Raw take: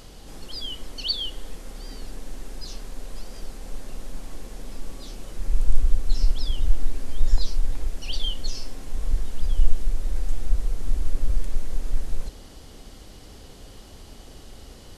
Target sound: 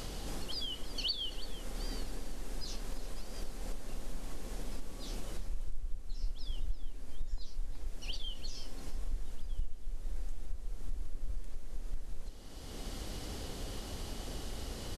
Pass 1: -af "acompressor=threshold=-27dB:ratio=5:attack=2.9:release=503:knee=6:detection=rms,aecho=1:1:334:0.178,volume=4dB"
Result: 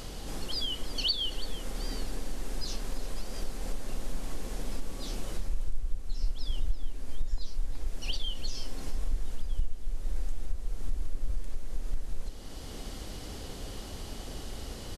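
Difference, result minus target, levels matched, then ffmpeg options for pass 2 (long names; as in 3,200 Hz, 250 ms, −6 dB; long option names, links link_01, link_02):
downward compressor: peak gain reduction −6.5 dB
-af "acompressor=threshold=-35dB:ratio=5:attack=2.9:release=503:knee=6:detection=rms,aecho=1:1:334:0.178,volume=4dB"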